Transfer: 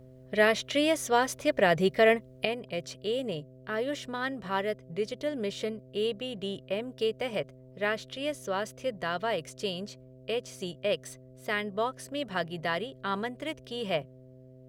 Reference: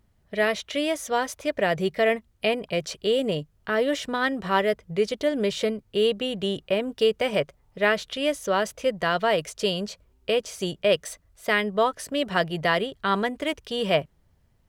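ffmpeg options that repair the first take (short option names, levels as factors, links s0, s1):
-af "bandreject=f=128.9:t=h:w=4,bandreject=f=257.8:t=h:w=4,bandreject=f=386.7:t=h:w=4,bandreject=f=515.6:t=h:w=4,bandreject=f=644.5:t=h:w=4,asetnsamples=n=441:p=0,asendcmd='2.45 volume volume 8dB',volume=1"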